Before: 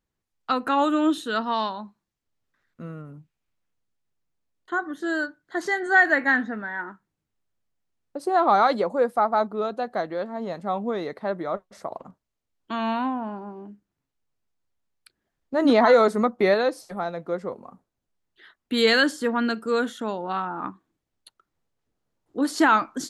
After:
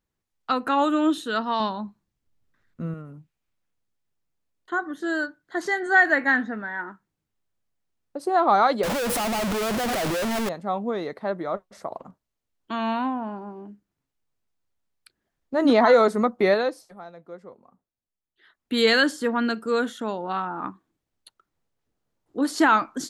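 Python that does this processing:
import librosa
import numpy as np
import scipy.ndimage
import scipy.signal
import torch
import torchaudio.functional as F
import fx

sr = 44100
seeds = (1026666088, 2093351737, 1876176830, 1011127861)

y = fx.low_shelf(x, sr, hz=280.0, db=10.0, at=(1.6, 2.94))
y = fx.clip_1bit(y, sr, at=(8.83, 10.49))
y = fx.edit(y, sr, fx.fade_down_up(start_s=16.55, length_s=2.18, db=-12.5, fade_s=0.39), tone=tone)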